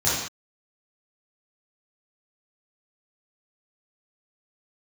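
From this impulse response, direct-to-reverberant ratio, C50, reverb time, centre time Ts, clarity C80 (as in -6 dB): -10.0 dB, -1.0 dB, no single decay rate, 67 ms, 3.5 dB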